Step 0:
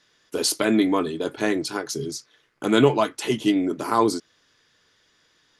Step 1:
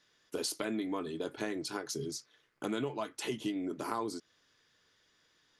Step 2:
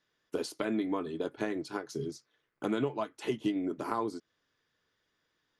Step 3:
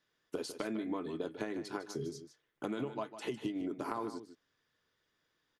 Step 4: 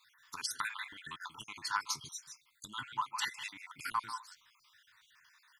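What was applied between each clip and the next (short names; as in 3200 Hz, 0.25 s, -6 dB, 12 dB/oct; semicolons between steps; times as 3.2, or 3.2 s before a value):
compressor 5:1, threshold -25 dBFS, peak gain reduction 13 dB; gain -7.5 dB
high shelf 3300 Hz -9.5 dB; upward expander 1.5:1, over -52 dBFS; gain +5.5 dB
compressor, threshold -32 dBFS, peak gain reduction 7 dB; on a send: echo 0.153 s -11.5 dB; on the sum: gain -1.5 dB
random spectral dropouts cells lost 48%; compressor 2:1, threshold -48 dBFS, peak gain reduction 8.5 dB; EQ curve 120 Hz 0 dB, 590 Hz -29 dB, 940 Hz +15 dB; gain +2.5 dB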